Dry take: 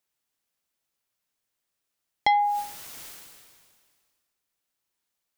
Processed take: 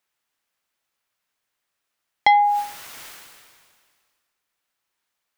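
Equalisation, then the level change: bell 1500 Hz +8 dB 2.8 oct; 0.0 dB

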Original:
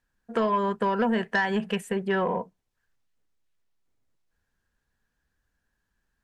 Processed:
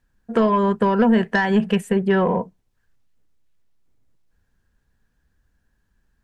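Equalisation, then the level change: low shelf 360 Hz +9 dB; +3.5 dB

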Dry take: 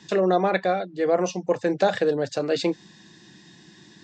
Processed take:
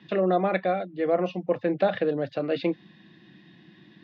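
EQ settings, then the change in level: air absorption 66 m; speaker cabinet 110–3300 Hz, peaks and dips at 420 Hz -6 dB, 910 Hz -8 dB, 1600 Hz -5 dB; 0.0 dB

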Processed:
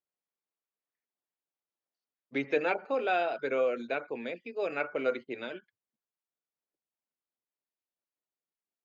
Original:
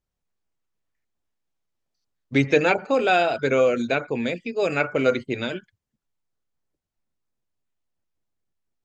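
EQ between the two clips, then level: HPF 330 Hz 12 dB/oct; air absorption 130 m; high shelf 6400 Hz -9 dB; -8.0 dB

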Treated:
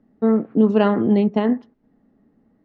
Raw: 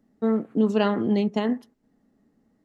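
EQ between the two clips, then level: LPF 2200 Hz 6 dB/oct; air absorption 130 m; +6.0 dB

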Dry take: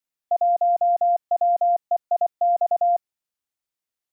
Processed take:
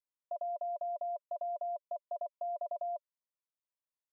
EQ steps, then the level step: double band-pass 760 Hz, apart 0.76 oct; -4.0 dB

